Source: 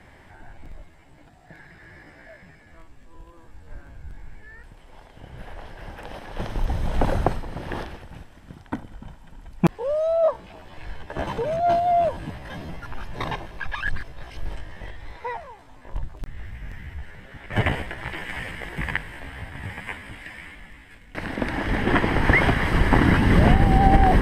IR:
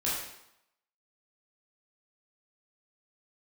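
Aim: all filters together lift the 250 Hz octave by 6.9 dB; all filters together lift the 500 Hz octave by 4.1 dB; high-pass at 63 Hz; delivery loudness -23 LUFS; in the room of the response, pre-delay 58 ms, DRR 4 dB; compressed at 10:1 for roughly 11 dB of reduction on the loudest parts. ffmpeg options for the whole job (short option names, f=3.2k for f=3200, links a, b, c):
-filter_complex "[0:a]highpass=63,equalizer=f=250:t=o:g=8,equalizer=f=500:t=o:g=4,acompressor=threshold=-19dB:ratio=10,asplit=2[a][b];[1:a]atrim=start_sample=2205,adelay=58[c];[b][c]afir=irnorm=-1:irlink=0,volume=-11.5dB[d];[a][d]amix=inputs=2:normalize=0,volume=3dB"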